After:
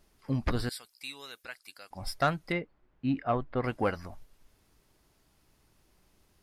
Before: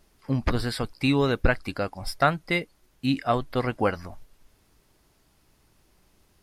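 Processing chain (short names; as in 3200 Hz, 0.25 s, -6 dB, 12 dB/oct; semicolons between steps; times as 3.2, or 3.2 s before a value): 0.69–1.91 differentiator; 2.52–3.64 LPF 1800 Hz 12 dB/oct; soft clip -11.5 dBFS, distortion -20 dB; gain -4 dB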